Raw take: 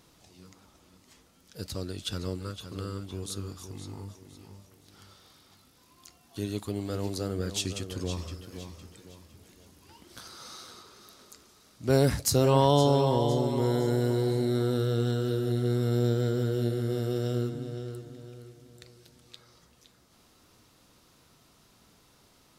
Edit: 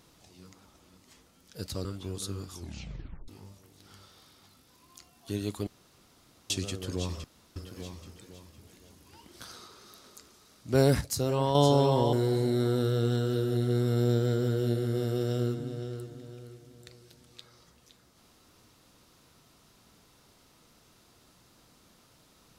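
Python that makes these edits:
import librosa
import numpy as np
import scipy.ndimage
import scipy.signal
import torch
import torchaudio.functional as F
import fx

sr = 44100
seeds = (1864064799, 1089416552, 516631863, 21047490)

y = fx.edit(x, sr, fx.cut(start_s=1.85, length_s=1.08),
    fx.tape_stop(start_s=3.62, length_s=0.74),
    fx.room_tone_fill(start_s=6.75, length_s=0.83),
    fx.insert_room_tone(at_s=8.32, length_s=0.32),
    fx.cut(start_s=10.29, length_s=0.39),
    fx.clip_gain(start_s=12.16, length_s=0.54, db=-6.0),
    fx.cut(start_s=13.28, length_s=0.8), tone=tone)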